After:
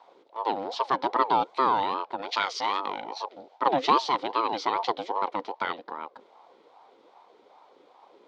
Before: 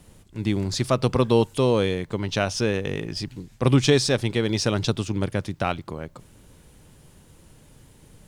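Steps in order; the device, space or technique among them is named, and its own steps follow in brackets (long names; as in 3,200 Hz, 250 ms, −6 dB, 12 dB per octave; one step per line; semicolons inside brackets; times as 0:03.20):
voice changer toy (ring modulator whose carrier an LFO sweeps 590 Hz, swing 35%, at 2.5 Hz; loudspeaker in its box 460–3,900 Hz, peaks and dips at 620 Hz −9 dB, 990 Hz +3 dB, 1,700 Hz −7 dB, 2,700 Hz −8 dB)
0:02.22–0:02.80: spectral tilt +3 dB per octave
level +2 dB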